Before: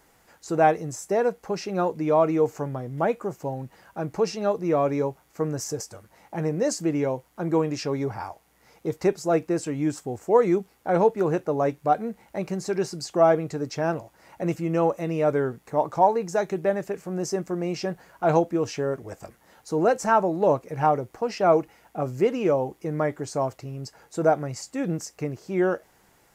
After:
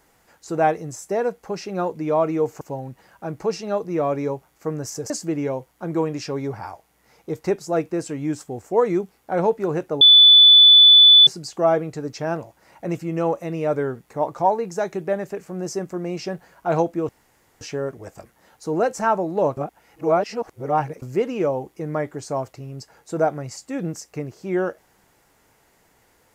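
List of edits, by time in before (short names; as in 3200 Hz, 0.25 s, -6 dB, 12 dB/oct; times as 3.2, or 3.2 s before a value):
2.61–3.35 cut
5.84–6.67 cut
11.58–12.84 bleep 3480 Hz -6.5 dBFS
18.66 insert room tone 0.52 s
20.62–22.07 reverse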